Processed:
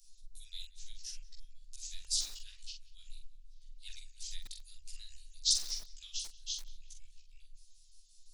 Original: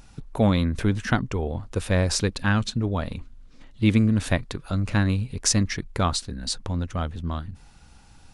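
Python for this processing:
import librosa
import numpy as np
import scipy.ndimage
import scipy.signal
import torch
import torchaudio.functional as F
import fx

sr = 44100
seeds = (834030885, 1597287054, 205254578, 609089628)

p1 = fx.pitch_trill(x, sr, semitones=-6.0, every_ms=86)
p2 = scipy.signal.sosfilt(scipy.signal.cheby2(4, 80, [110.0, 870.0], 'bandstop', fs=sr, output='sos'), p1)
p3 = fx.chorus_voices(p2, sr, voices=2, hz=0.54, base_ms=16, depth_ms=3.8, mix_pct=55)
p4 = fx.doubler(p3, sr, ms=45.0, db=-6)
p5 = p4 + fx.echo_filtered(p4, sr, ms=180, feedback_pct=58, hz=3700.0, wet_db=-19.0, dry=0)
y = fx.echo_crushed(p5, sr, ms=90, feedback_pct=55, bits=6, wet_db=-13.5)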